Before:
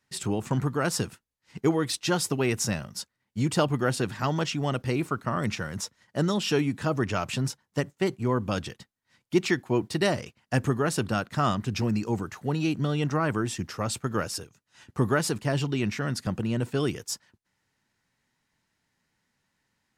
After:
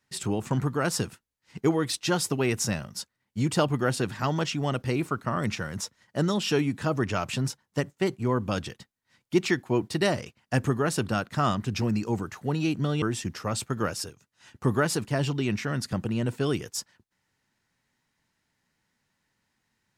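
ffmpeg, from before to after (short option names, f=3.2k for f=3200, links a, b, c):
-filter_complex "[0:a]asplit=2[a][b];[a]atrim=end=13.022[c];[b]atrim=start=13.358[d];[c][d]acrossfade=d=0.004:c1=hsin:c2=hsin"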